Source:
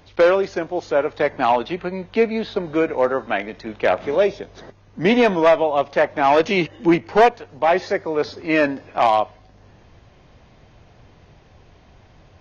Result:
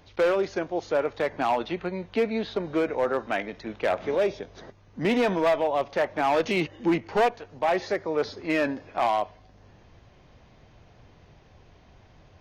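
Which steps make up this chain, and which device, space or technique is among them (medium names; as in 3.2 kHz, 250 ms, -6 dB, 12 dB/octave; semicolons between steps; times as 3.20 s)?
limiter into clipper (peak limiter -10.5 dBFS, peak gain reduction 3.5 dB; hard clipper -13 dBFS, distortion -21 dB); trim -4.5 dB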